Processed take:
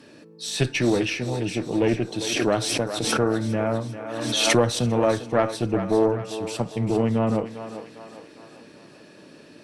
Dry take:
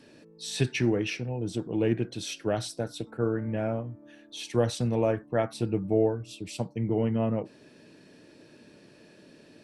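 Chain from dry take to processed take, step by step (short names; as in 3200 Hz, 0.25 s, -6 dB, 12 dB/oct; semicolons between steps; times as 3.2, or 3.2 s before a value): HPF 70 Hz 6 dB/oct; bell 1200 Hz +4.5 dB 0.38 oct; tube stage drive 16 dB, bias 0.55; thinning echo 0.399 s, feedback 57%, high-pass 440 Hz, level -9 dB; FDN reverb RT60 1 s, low-frequency decay 1×, high-frequency decay 0.65×, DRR 20 dB; 2.24–4.81 backwards sustainer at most 33 dB/s; gain +8 dB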